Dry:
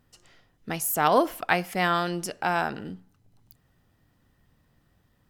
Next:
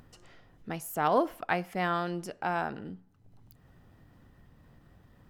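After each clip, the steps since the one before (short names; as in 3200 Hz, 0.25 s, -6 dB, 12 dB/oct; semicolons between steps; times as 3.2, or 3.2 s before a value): high shelf 2600 Hz -10 dB; upward compressor, threshold -41 dBFS; gain -4 dB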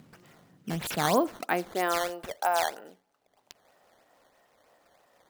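high shelf 9800 Hz +10 dB; high-pass sweep 170 Hz -> 610 Hz, 1.21–2.16; decimation with a swept rate 10×, swing 160% 3.1 Hz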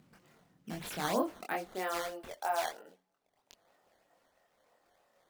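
chorus voices 4, 1 Hz, delay 24 ms, depth 3 ms; gain -4.5 dB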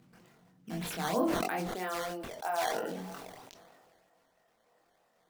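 on a send at -9.5 dB: reverb RT60 0.20 s, pre-delay 3 ms; on the sum: sustainer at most 27 dB/s; gain -1 dB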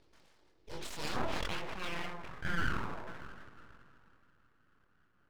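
tape echo 0.328 s, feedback 55%, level -17 dB, low-pass 5800 Hz; low-pass sweep 4600 Hz -> 850 Hz, 0.91–2.71; full-wave rectifier; gain -3.5 dB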